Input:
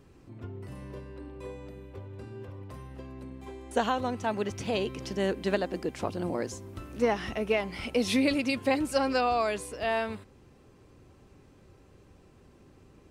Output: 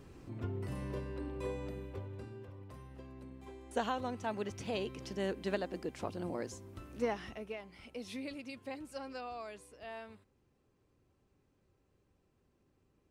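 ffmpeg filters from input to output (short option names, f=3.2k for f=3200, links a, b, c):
-af "volume=2dB,afade=t=out:st=1.72:d=0.7:silence=0.334965,afade=t=out:st=6.98:d=0.58:silence=0.316228"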